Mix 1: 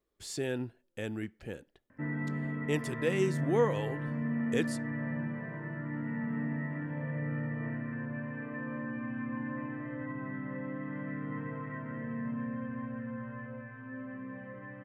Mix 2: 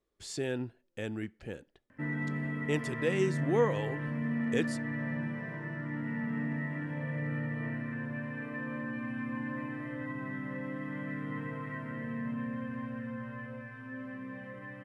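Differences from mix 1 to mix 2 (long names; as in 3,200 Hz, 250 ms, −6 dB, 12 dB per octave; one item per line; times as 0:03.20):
background: remove low-pass filter 1,900 Hz 12 dB per octave
master: add low-pass filter 9,300 Hz 12 dB per octave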